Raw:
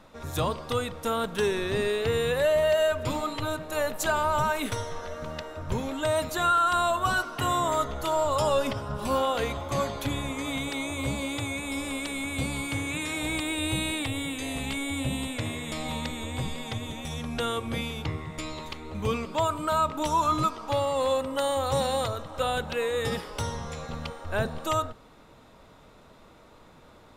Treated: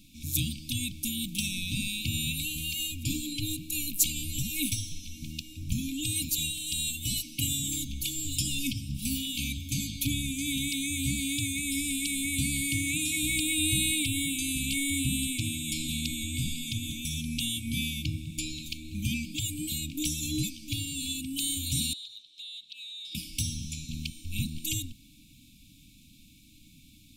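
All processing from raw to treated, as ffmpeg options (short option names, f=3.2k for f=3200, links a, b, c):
-filter_complex "[0:a]asettb=1/sr,asplit=3[a][b][c];[a]atrim=end=21.934[d];[b]atrim=start=21.93:end=23.15,asetpts=PTS-STARTPTS,afade=t=in:d=0.004:c=qsin,afade=t=out:st=1.216:d=0.004:c=qsin,bandpass=f=3.8k:t=q:w=4.9,acompressor=threshold=-42dB:ratio=5:attack=3.2:release=140:knee=1:detection=peak[e];[c]atrim=start=23.146[f];[d][e]acrossfade=d=0.004:c1=hsin:c2=qsin[g];[g][f]acrossfade=d=0.004:c1=qsin:c2=hsin,aemphasis=mode=production:type=50kf,afftfilt=real='re*(1-between(b*sr/4096,320,2200))':imag='im*(1-between(b*sr/4096,320,2200))':win_size=4096:overlap=0.75"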